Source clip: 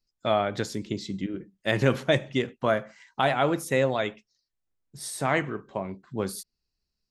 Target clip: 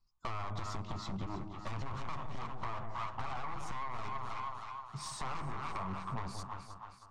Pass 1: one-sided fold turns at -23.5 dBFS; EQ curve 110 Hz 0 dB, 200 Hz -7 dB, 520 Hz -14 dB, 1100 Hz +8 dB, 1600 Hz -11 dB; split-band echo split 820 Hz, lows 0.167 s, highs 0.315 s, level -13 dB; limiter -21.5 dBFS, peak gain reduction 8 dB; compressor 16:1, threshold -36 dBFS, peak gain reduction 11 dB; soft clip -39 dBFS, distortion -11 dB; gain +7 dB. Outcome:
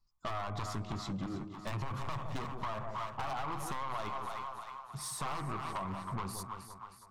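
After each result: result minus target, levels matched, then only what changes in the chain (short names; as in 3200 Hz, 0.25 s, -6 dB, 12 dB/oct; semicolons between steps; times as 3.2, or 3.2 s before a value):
one-sided fold: distortion -16 dB; 8000 Hz band +3.5 dB
change: one-sided fold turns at -32 dBFS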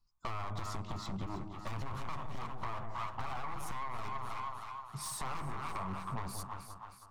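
8000 Hz band +4.5 dB
add after compressor: LPF 7500 Hz 24 dB/oct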